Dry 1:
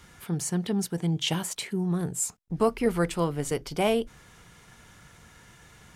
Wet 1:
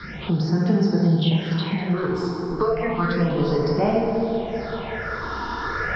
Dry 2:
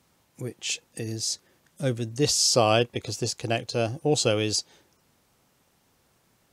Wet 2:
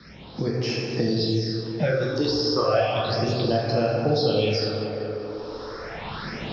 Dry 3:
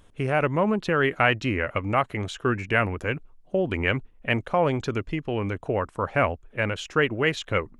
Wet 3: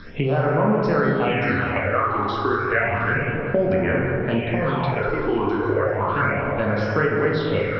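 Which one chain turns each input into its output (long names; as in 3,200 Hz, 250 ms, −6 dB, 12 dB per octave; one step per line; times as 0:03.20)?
camcorder AGC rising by 10 dB per second
Chebyshev low-pass with heavy ripple 5,400 Hz, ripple 3 dB
dense smooth reverb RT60 1.8 s, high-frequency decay 0.5×, DRR −4.5 dB
all-pass phaser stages 6, 0.32 Hz, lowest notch 150–3,500 Hz
on a send: tape delay 193 ms, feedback 63%, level −9 dB, low-pass 2,400 Hz
on the sum: multiband upward and downward compressor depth 70%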